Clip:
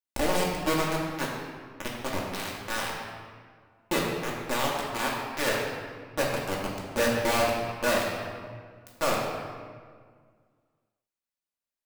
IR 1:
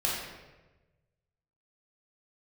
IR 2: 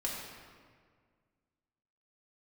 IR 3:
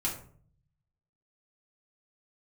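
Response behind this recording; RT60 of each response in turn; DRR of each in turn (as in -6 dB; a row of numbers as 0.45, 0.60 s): 2; 1.2, 1.8, 0.50 s; -5.5, -5.0, -5.0 dB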